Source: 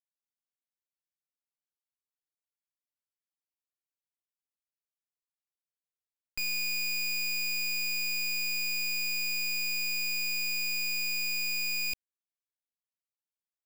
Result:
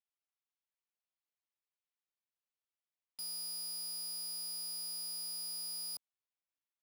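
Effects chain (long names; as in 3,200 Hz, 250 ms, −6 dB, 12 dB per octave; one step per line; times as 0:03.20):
phaser with its sweep stopped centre 810 Hz, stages 6
bad sample-rate conversion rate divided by 2×, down none, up hold
Bessel high-pass filter 230 Hz, order 2
hard clipping −39.5 dBFS, distortion −9 dB
low-pass that shuts in the quiet parts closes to 2,100 Hz
wrong playback speed 7.5 ips tape played at 15 ips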